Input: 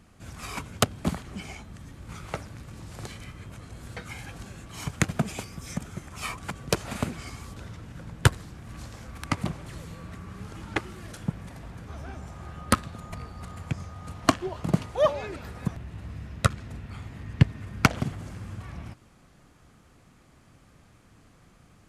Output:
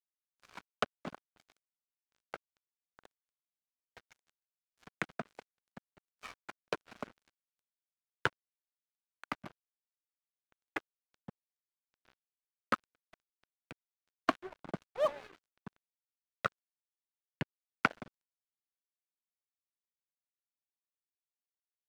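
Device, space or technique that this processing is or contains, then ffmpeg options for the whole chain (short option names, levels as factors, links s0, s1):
pocket radio on a weak battery: -af "highpass=290,lowpass=3000,aeval=exprs='sgn(val(0))*max(abs(val(0))-0.0158,0)':c=same,equalizer=f=1500:t=o:w=0.26:g=4.5,volume=0.422"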